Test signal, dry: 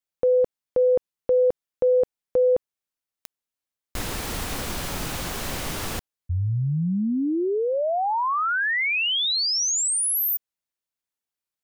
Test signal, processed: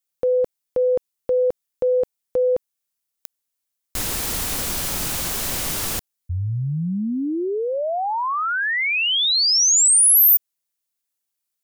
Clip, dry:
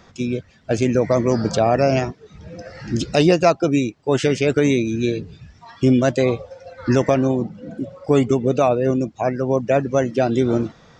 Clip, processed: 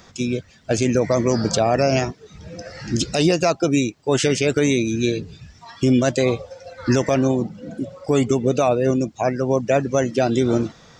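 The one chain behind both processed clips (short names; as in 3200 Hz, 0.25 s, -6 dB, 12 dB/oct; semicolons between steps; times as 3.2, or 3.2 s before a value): high shelf 4600 Hz +11.5 dB; maximiser +6.5 dB; gain -6.5 dB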